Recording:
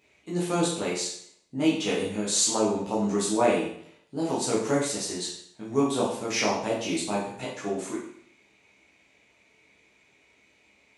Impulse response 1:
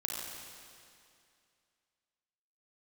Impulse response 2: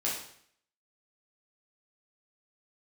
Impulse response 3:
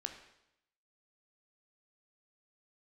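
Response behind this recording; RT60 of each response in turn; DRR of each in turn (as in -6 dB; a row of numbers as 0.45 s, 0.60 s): 2; 2.4 s, 0.60 s, 0.80 s; -2.5 dB, -7.0 dB, 4.5 dB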